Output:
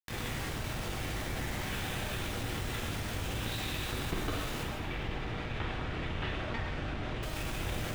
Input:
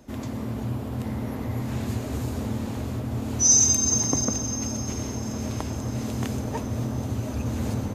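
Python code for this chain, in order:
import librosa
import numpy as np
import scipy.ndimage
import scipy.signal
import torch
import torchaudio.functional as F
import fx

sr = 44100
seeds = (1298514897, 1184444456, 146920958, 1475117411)

y = scipy.signal.sosfilt(scipy.signal.butter(4, 530.0, 'highpass', fs=sr, output='sos'), x)
y = fx.doubler(y, sr, ms=39.0, db=-7.0)
y = fx.lpc_vocoder(y, sr, seeds[0], excitation='pitch_kept', order=8)
y = fx.cheby_harmonics(y, sr, harmonics=(4,), levels_db=(-11,), full_scale_db=-22.0)
y = fx.peak_eq(y, sr, hz=830.0, db=-12.5, octaves=1.2)
y = fx.quant_dither(y, sr, seeds[1], bits=8, dither='none')
y = fx.lowpass(y, sr, hz=2900.0, slope=12, at=(4.63, 7.23))
y = fx.rev_double_slope(y, sr, seeds[2], early_s=0.98, late_s=2.7, knee_db=-18, drr_db=-1.0)
y = fx.env_flatten(y, sr, amount_pct=50)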